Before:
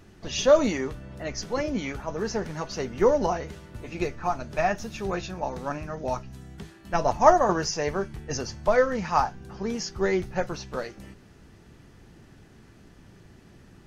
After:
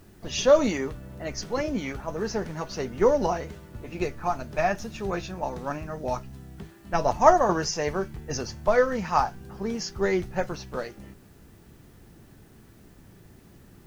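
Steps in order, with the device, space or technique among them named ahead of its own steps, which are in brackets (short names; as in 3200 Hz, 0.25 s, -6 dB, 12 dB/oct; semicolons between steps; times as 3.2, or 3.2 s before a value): plain cassette with noise reduction switched in (mismatched tape noise reduction decoder only; wow and flutter 28 cents; white noise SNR 37 dB)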